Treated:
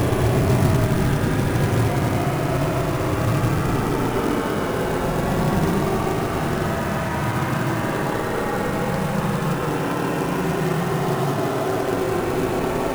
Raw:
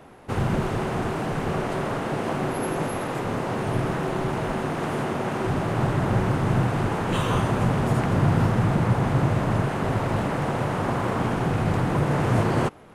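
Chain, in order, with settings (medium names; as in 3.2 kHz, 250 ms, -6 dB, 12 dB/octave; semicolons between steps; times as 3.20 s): Paulstretch 37×, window 0.05 s, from 3.75 s; short-mantissa float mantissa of 2-bit; trim +4 dB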